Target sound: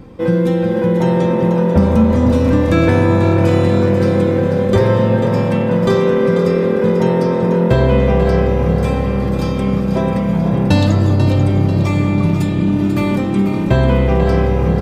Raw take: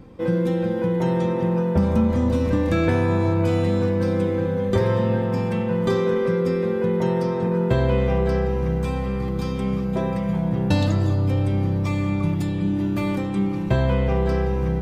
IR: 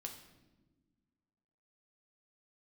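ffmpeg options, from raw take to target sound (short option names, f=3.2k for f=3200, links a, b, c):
-filter_complex "[0:a]asplit=6[a][b][c][d][e][f];[b]adelay=491,afreqshift=39,volume=-9dB[g];[c]adelay=982,afreqshift=78,volume=-15.6dB[h];[d]adelay=1473,afreqshift=117,volume=-22.1dB[i];[e]adelay=1964,afreqshift=156,volume=-28.7dB[j];[f]adelay=2455,afreqshift=195,volume=-35.2dB[k];[a][g][h][i][j][k]amix=inputs=6:normalize=0,volume=7dB"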